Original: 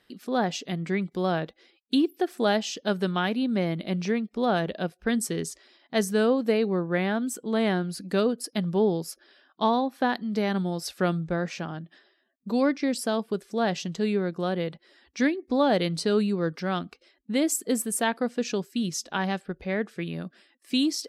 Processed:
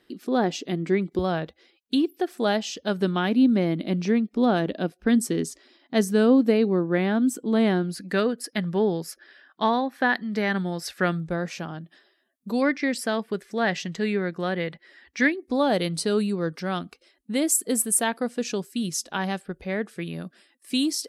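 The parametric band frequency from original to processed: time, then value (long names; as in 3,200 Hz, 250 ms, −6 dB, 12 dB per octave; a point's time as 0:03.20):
parametric band +10 dB 0.71 octaves
330 Hz
from 0:01.19 74 Hz
from 0:03.01 280 Hz
from 0:07.96 1,800 Hz
from 0:11.20 11,000 Hz
from 0:12.62 1,900 Hz
from 0:15.32 10,000 Hz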